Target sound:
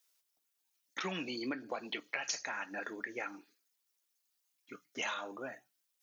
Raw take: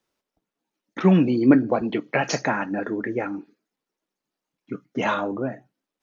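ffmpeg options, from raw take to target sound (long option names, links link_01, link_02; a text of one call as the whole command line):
ffmpeg -i in.wav -af "aderivative,acompressor=threshold=-42dB:ratio=10,volume=8dB" out.wav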